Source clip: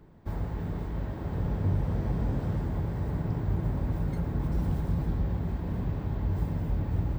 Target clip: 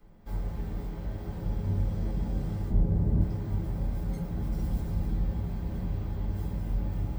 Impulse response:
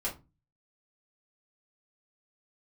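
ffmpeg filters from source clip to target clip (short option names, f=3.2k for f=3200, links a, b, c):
-filter_complex "[0:a]highshelf=f=2.6k:g=10,acrossover=split=410|3000[a][b][c];[b]acompressor=threshold=-47dB:ratio=3[d];[a][d][c]amix=inputs=3:normalize=0,asettb=1/sr,asplit=3[e][f][g];[e]atrim=end=2.704[h];[f]atrim=start=2.7:end=3.21,asetpts=PTS-STARTPTS,afade=t=in:d=0.004:c=qsin,afade=t=out:st=0.506:d=0.004:c=qsin,tiltshelf=f=860:g=9[i];[g]atrim=start=3.206[j];[h][i]acrossfade=d=0.004:c1=hsin:c2=qsin[k];[k][j]acrossfade=d=0.004:c1=qsin:c2=hsin[l];[1:a]atrim=start_sample=2205[m];[l][m]afir=irnorm=-1:irlink=0,volume=-7.5dB"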